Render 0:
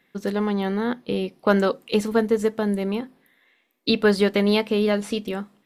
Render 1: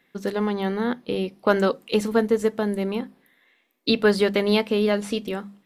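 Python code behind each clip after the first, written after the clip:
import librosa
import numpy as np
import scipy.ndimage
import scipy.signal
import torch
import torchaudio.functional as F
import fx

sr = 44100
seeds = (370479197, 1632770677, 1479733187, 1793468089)

y = fx.hum_notches(x, sr, base_hz=50, count=4)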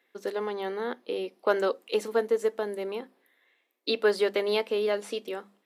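y = fx.ladder_highpass(x, sr, hz=290.0, resonance_pct=25)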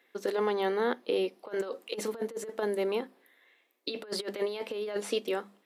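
y = fx.over_compress(x, sr, threshold_db=-30.0, ratio=-0.5)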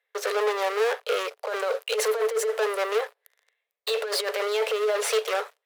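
y = fx.leveller(x, sr, passes=5)
y = scipy.signal.sosfilt(scipy.signal.cheby1(6, 3, 420.0, 'highpass', fs=sr, output='sos'), y)
y = y * 10.0 ** (-1.0 / 20.0)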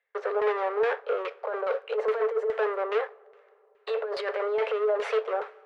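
y = fx.rev_double_slope(x, sr, seeds[0], early_s=0.4, late_s=3.4, knee_db=-17, drr_db=15.5)
y = fx.filter_lfo_lowpass(y, sr, shape='saw_down', hz=2.4, low_hz=830.0, high_hz=2500.0, q=0.95)
y = y * 10.0 ** (-1.5 / 20.0)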